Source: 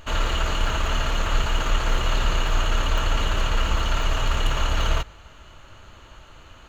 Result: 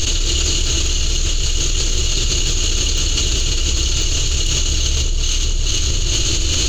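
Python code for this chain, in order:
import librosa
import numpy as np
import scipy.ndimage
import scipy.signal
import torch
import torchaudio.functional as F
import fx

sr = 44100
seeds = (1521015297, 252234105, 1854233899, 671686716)

y = fx.curve_eq(x, sr, hz=(130.0, 220.0, 350.0, 560.0, 950.0, 1900.0, 2800.0, 4700.0, 6700.0, 11000.0), db=(0, -8, 3, -12, -20, -12, 1, 13, 14, -2))
y = fx.echo_alternate(y, sr, ms=215, hz=1100.0, feedback_pct=66, wet_db=-8.5)
y = fx.env_flatten(y, sr, amount_pct=100)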